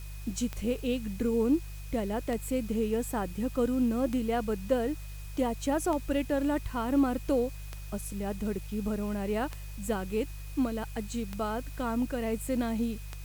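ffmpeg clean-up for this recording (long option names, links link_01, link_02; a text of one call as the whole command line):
ffmpeg -i in.wav -af "adeclick=threshold=4,bandreject=frequency=50:width_type=h:width=4,bandreject=frequency=100:width_type=h:width=4,bandreject=frequency=150:width_type=h:width=4,bandreject=frequency=2500:width=30,afwtdn=0.0022" out.wav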